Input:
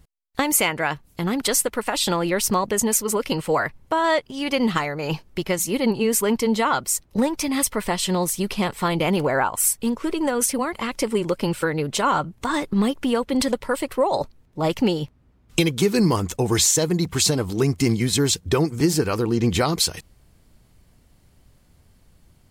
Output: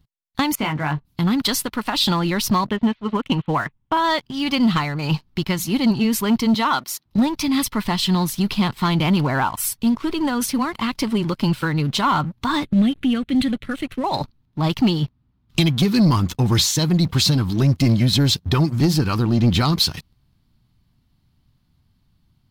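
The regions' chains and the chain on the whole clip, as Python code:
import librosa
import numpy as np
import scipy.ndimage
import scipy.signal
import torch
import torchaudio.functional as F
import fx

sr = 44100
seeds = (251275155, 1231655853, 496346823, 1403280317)

y = fx.chain(x, sr, fx.spacing_loss(db_at_10k=31),
    fx.hum_notches(base_hz=60, count=3),
    fx.doubler(ms=20.0, db=-4.5), at=(0.55, 1.05))
y = fx.chain(y, sr, fx.steep_lowpass(hz=3600.0, slope=48),
    fx.transient(attack_db=2, sustain_db=-10), at=(2.67, 3.97))
y = fx.chain(y, sr, fx.highpass(hz=240.0, slope=12),
    fx.peak_eq(hz=7900.0, db=-7.5, octaves=0.21), at=(6.54, 7.06))
y = fx.chain(y, sr, fx.lowpass(hz=11000.0, slope=24),
    fx.fixed_phaser(hz=2300.0, stages=4), at=(12.64, 14.04))
y = fx.graphic_eq(y, sr, hz=(125, 250, 500, 1000, 2000, 4000, 8000), db=(7, 5, -12, 4, -3, 8, -11))
y = fx.leveller(y, sr, passes=2)
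y = F.gain(torch.from_numpy(y), -5.5).numpy()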